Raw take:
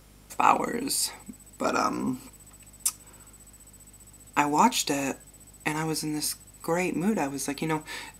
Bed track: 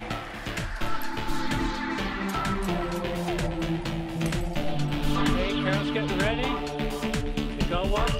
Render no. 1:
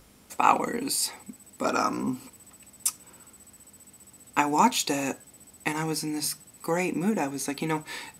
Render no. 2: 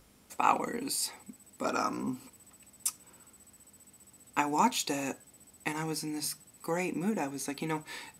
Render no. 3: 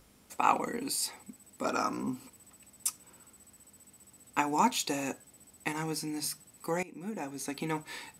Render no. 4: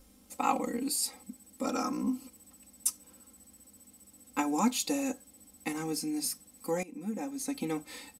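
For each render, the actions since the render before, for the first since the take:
hum removal 50 Hz, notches 3
level −5.5 dB
0:06.83–0:07.55: fade in, from −19.5 dB
parametric band 1,600 Hz −8 dB 2.7 octaves; comb filter 3.8 ms, depth 94%

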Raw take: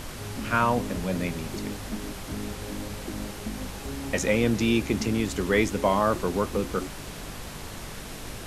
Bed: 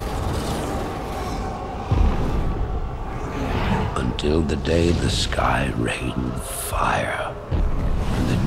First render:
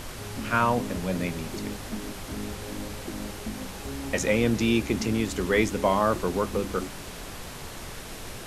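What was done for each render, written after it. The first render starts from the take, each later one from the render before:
hum removal 50 Hz, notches 6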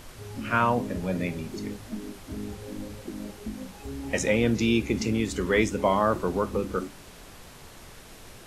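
noise reduction from a noise print 8 dB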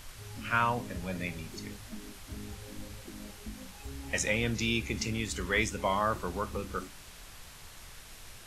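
parametric band 330 Hz −11 dB 2.8 octaves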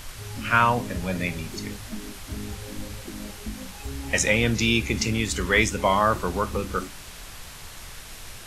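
level +8.5 dB

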